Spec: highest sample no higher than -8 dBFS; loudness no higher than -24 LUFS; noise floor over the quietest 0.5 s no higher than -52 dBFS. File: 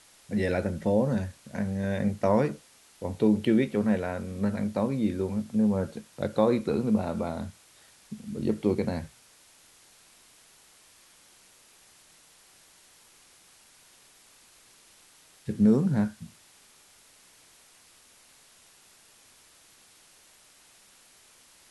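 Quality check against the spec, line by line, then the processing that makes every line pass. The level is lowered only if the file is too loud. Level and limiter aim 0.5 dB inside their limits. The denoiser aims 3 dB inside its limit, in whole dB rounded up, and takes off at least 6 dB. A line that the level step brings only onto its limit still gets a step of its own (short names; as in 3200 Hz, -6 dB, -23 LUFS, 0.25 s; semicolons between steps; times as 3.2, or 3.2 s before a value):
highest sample -9.5 dBFS: OK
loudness -27.5 LUFS: OK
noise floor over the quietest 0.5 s -58 dBFS: OK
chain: none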